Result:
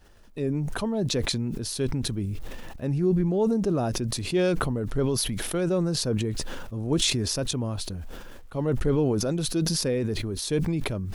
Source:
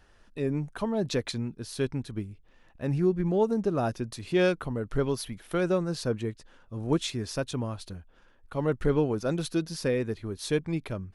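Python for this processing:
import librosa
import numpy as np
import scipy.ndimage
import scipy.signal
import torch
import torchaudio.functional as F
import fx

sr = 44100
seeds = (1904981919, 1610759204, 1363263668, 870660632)

p1 = fx.peak_eq(x, sr, hz=1600.0, db=-6.0, octaves=2.2)
p2 = fx.level_steps(p1, sr, step_db=20)
p3 = p1 + (p2 * 10.0 ** (-0.5 / 20.0))
p4 = fx.quant_dither(p3, sr, seeds[0], bits=12, dither='none')
y = fx.sustainer(p4, sr, db_per_s=20.0)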